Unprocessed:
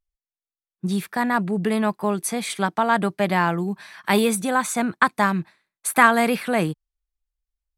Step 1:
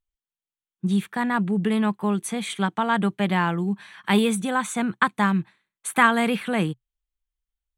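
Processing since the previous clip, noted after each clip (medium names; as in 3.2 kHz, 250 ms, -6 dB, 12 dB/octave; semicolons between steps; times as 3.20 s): graphic EQ with 31 bands 125 Hz +5 dB, 200 Hz +5 dB, 630 Hz -6 dB, 3.15 kHz +6 dB, 5 kHz -11 dB, 12.5 kHz -11 dB; trim -2.5 dB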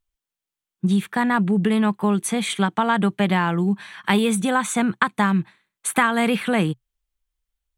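compression 4:1, threshold -21 dBFS, peak gain reduction 8.5 dB; trim +5.5 dB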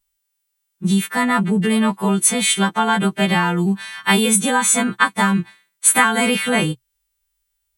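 partials quantised in pitch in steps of 2 st; trim +2.5 dB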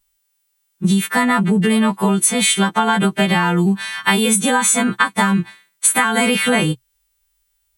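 compression, threshold -18 dBFS, peak gain reduction 9.5 dB; trim +6 dB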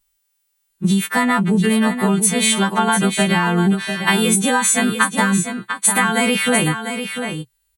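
delay 697 ms -8 dB; trim -1 dB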